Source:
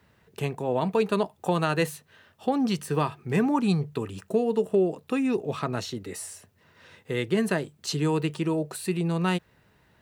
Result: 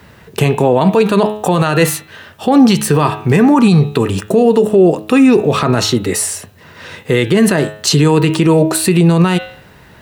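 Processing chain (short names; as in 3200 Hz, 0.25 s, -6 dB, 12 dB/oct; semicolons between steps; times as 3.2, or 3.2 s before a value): de-hum 106.1 Hz, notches 39; maximiser +21.5 dB; gain -1 dB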